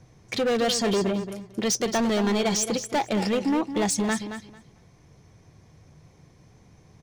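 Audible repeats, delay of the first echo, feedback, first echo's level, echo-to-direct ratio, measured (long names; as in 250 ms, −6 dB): 2, 223 ms, 18%, −10.0 dB, −10.0 dB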